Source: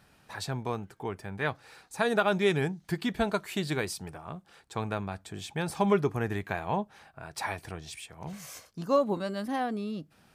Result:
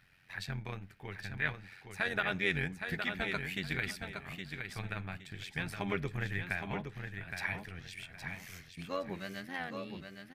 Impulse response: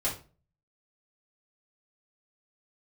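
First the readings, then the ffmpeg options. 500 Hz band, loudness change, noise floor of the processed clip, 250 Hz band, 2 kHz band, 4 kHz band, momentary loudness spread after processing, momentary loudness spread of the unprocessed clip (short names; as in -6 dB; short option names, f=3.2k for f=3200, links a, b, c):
-12.5 dB, -6.5 dB, -57 dBFS, -10.0 dB, +0.5 dB, -3.5 dB, 13 LU, 16 LU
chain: -filter_complex "[0:a]equalizer=f=125:t=o:w=1:g=4,equalizer=f=250:t=o:w=1:g=-8,equalizer=f=500:t=o:w=1:g=-6,equalizer=f=1k:t=o:w=1:g=-9,equalizer=f=2k:t=o:w=1:g=11,equalizer=f=8k:t=o:w=1:g=-7,tremolo=f=90:d=0.75,aecho=1:1:816|1632|2448:0.473|0.118|0.0296,asplit=2[a][b];[1:a]atrim=start_sample=2205,asetrate=31752,aresample=44100[c];[b][c]afir=irnorm=-1:irlink=0,volume=-28dB[d];[a][d]amix=inputs=2:normalize=0,volume=-2.5dB"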